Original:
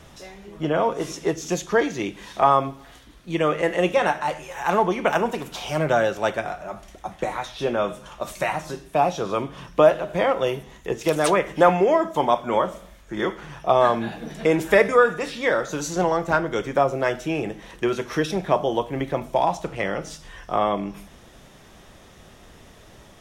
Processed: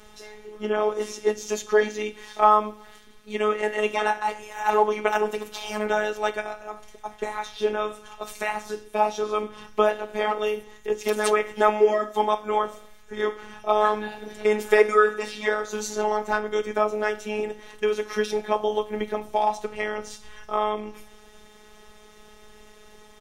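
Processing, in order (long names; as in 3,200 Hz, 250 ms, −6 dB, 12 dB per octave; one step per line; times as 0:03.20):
comb filter 2.5 ms, depth 68%
phases set to zero 212 Hz
level −1 dB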